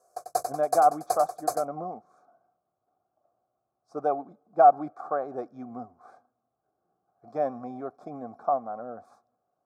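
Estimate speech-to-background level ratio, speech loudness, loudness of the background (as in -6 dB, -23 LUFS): 5.5 dB, -27.0 LUFS, -32.5 LUFS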